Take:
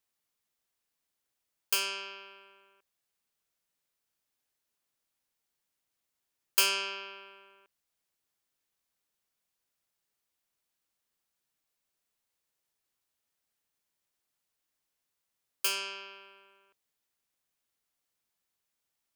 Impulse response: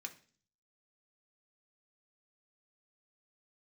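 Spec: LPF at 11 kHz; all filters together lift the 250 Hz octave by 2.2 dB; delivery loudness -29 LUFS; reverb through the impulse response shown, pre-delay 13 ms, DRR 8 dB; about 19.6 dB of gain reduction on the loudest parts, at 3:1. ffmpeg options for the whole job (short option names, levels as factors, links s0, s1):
-filter_complex "[0:a]lowpass=11000,equalizer=f=250:t=o:g=5,acompressor=threshold=0.00316:ratio=3,asplit=2[s0][s1];[1:a]atrim=start_sample=2205,adelay=13[s2];[s1][s2]afir=irnorm=-1:irlink=0,volume=0.562[s3];[s0][s3]amix=inputs=2:normalize=0,volume=8.91"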